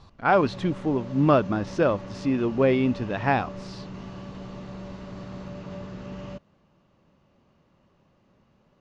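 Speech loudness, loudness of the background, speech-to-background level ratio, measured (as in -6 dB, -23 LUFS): -24.0 LUFS, -39.0 LUFS, 15.0 dB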